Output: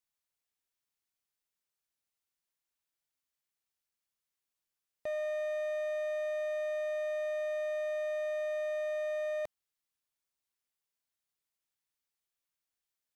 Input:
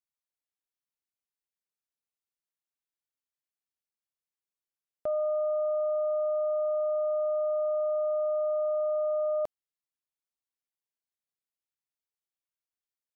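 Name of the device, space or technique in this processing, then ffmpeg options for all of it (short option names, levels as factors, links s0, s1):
limiter into clipper: -af "equalizer=f=350:t=o:w=2.9:g=-3.5,alimiter=level_in=2.51:limit=0.0631:level=0:latency=1,volume=0.398,asoftclip=type=hard:threshold=0.0133,volume=1.68"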